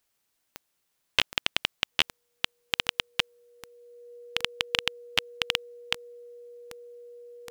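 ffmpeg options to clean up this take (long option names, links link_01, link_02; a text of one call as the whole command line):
ffmpeg -i in.wav -af "adeclick=threshold=4,bandreject=frequency=480:width=30" out.wav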